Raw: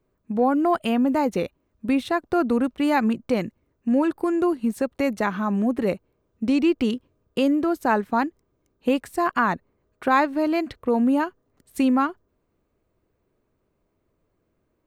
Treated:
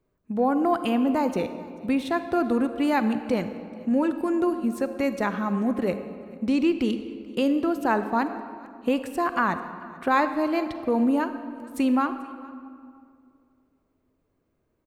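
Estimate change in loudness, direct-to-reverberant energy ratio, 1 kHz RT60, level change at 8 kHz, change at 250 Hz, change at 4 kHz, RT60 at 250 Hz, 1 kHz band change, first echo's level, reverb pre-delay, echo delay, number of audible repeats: -2.0 dB, 9.5 dB, 2.1 s, n/a, -2.0 dB, -2.0 dB, 2.7 s, -2.0 dB, -22.5 dB, 38 ms, 0.439 s, 1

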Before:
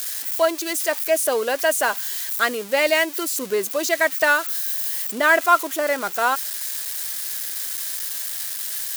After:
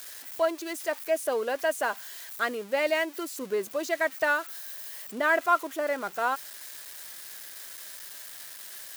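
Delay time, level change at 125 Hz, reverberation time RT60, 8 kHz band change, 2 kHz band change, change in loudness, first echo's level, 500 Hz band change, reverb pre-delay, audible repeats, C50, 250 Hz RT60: none, n/a, none, -14.5 dB, -8.5 dB, -9.0 dB, none, -6.5 dB, none, none, none, none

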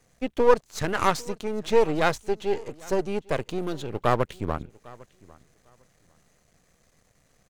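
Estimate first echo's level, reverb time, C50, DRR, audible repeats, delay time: -23.0 dB, none, none, none, 1, 0.802 s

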